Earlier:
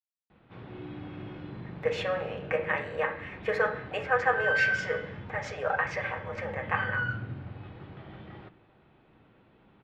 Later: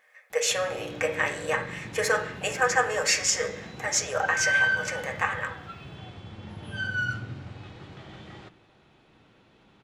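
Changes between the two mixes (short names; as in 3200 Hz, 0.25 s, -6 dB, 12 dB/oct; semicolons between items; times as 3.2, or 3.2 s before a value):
speech: entry -1.50 s; master: remove air absorption 410 m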